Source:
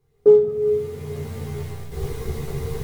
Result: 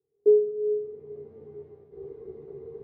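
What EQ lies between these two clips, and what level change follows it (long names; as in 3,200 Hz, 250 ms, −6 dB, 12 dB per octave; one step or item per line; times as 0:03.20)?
resonant band-pass 390 Hz, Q 3.6
high-frequency loss of the air 150 metres
−5.0 dB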